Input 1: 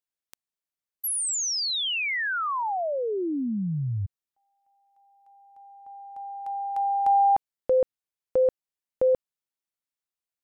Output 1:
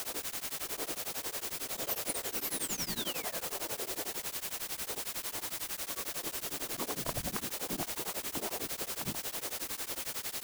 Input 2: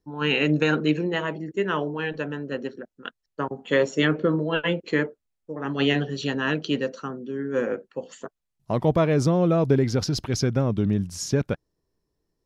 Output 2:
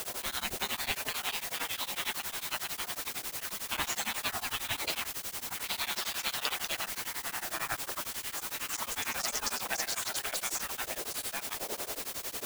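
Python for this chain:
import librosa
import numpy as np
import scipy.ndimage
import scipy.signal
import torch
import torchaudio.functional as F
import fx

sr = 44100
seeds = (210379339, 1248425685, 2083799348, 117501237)

p1 = fx.dmg_wind(x, sr, seeds[0], corner_hz=100.0, level_db=-29.0)
p2 = fx.dynamic_eq(p1, sr, hz=520.0, q=1.8, threshold_db=-36.0, ratio=4.0, max_db=4)
p3 = fx.over_compress(p2, sr, threshold_db=-23.0, ratio=-1.0)
p4 = p2 + F.gain(torch.from_numpy(p3), 2.0).numpy()
p5 = fx.echo_pitch(p4, sr, ms=532, semitones=2, count=3, db_per_echo=-6.0)
p6 = fx.spec_gate(p5, sr, threshold_db=-25, keep='weak')
p7 = fx.quant_dither(p6, sr, seeds[1], bits=6, dither='triangular')
y = p7 * np.abs(np.cos(np.pi * 11.0 * np.arange(len(p7)) / sr))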